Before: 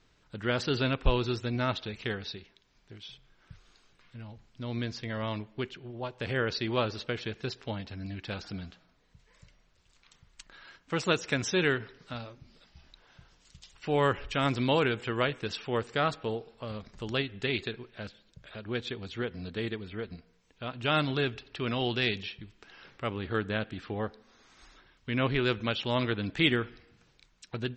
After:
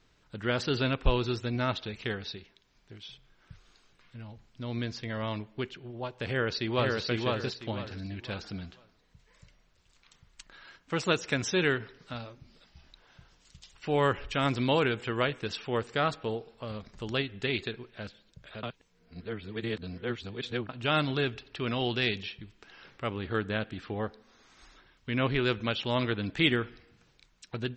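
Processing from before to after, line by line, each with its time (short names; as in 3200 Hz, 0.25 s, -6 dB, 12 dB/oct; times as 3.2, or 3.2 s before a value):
6.28–7 echo throw 0.5 s, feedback 30%, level -2 dB
18.63–20.69 reverse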